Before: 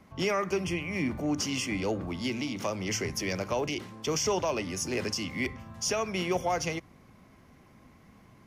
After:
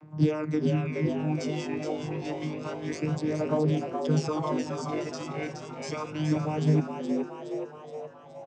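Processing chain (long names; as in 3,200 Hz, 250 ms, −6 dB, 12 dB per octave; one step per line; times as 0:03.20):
channel vocoder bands 16, saw 153 Hz
phase shifter 0.29 Hz, delay 1.6 ms, feedback 61%
on a send: echo with shifted repeats 420 ms, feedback 55%, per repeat +100 Hz, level −6 dB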